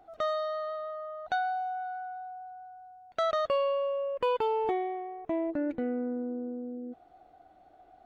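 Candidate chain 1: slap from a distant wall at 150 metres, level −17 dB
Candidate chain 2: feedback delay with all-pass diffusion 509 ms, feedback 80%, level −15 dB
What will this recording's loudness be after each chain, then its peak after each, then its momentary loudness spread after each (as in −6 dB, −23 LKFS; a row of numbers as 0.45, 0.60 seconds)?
−32.0, −32.5 LKFS; −18.0, −17.5 dBFS; 15, 15 LU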